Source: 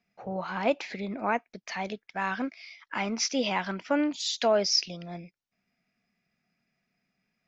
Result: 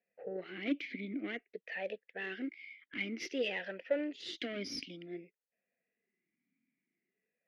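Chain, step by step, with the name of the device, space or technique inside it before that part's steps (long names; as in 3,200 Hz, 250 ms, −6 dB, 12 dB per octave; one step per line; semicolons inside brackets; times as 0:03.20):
low-pass that shuts in the quiet parts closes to 1,900 Hz, open at −22.5 dBFS
talk box (tube saturation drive 22 dB, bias 0.6; formant filter swept between two vowels e-i 0.53 Hz)
level +9 dB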